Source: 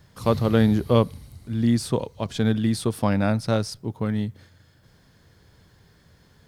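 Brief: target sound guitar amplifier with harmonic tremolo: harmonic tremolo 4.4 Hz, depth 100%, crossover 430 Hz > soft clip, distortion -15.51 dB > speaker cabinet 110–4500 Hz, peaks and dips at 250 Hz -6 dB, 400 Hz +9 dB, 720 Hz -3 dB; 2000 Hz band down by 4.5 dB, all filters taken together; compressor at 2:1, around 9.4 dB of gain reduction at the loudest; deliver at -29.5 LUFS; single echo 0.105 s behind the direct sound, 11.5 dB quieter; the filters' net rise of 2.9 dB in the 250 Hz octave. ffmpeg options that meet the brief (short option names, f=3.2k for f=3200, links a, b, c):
-filter_complex "[0:a]equalizer=f=250:t=o:g=6.5,equalizer=f=2k:t=o:g=-6.5,acompressor=threshold=-28dB:ratio=2,aecho=1:1:105:0.266,acrossover=split=430[a][b];[a]aeval=exprs='val(0)*(1-1/2+1/2*cos(2*PI*4.4*n/s))':c=same[c];[b]aeval=exprs='val(0)*(1-1/2-1/2*cos(2*PI*4.4*n/s))':c=same[d];[c][d]amix=inputs=2:normalize=0,asoftclip=threshold=-23dB,highpass=110,equalizer=f=250:t=q:w=4:g=-6,equalizer=f=400:t=q:w=4:g=9,equalizer=f=720:t=q:w=4:g=-3,lowpass=f=4.5k:w=0.5412,lowpass=f=4.5k:w=1.3066,volume=6dB"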